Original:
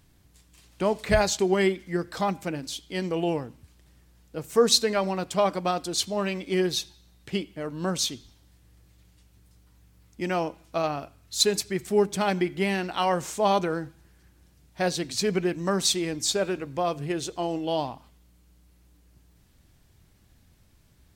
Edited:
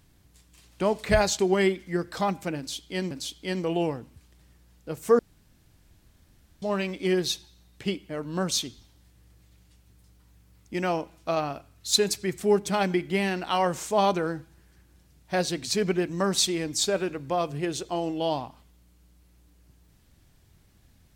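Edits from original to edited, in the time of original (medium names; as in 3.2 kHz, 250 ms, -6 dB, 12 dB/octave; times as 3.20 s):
2.58–3.11 s: loop, 2 plays
4.66–6.09 s: room tone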